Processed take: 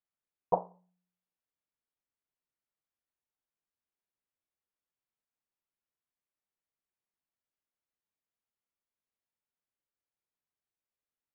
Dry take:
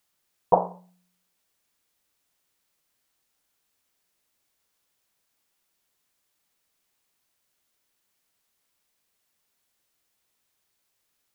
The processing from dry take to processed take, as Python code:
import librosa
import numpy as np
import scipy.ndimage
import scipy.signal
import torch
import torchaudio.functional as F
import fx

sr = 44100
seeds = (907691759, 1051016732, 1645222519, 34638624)

y = fx.air_absorb(x, sr, metres=460.0)
y = fx.upward_expand(y, sr, threshold_db=-33.0, expansion=1.5)
y = y * 10.0 ** (-7.0 / 20.0)